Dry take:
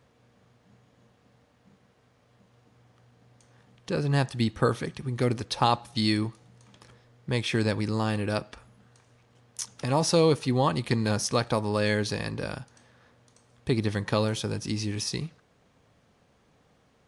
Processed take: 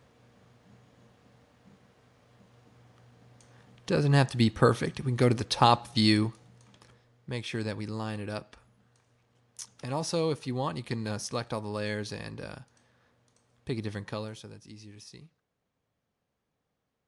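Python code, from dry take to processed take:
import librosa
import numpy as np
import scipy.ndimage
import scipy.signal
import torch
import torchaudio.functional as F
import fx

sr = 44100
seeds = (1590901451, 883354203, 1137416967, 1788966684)

y = fx.gain(x, sr, db=fx.line((6.12, 2.0), (7.33, -7.5), (13.98, -7.5), (14.63, -18.0)))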